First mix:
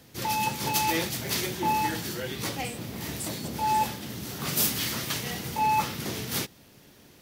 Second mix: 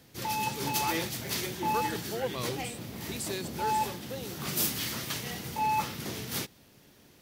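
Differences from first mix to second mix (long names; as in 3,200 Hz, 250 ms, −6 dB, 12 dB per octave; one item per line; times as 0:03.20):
speech: remove first difference
background −4.0 dB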